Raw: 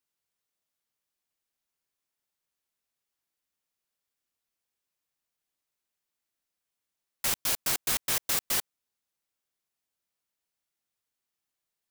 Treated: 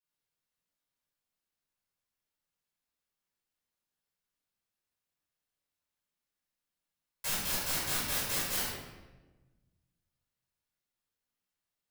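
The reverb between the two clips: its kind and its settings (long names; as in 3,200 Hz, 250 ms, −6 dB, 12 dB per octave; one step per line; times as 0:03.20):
rectangular room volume 740 cubic metres, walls mixed, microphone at 5.3 metres
level −12.5 dB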